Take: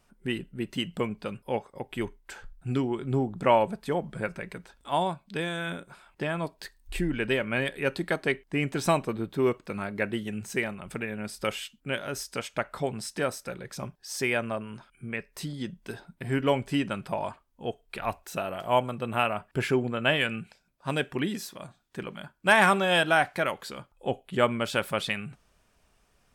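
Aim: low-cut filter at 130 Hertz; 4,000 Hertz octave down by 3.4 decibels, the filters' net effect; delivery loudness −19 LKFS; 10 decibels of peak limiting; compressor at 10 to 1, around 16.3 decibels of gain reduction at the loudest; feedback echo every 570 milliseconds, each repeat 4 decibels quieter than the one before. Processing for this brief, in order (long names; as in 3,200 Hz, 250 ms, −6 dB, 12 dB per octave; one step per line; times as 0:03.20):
high-pass filter 130 Hz
parametric band 4,000 Hz −5 dB
downward compressor 10 to 1, threshold −33 dBFS
brickwall limiter −29 dBFS
repeating echo 570 ms, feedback 63%, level −4 dB
level +20.5 dB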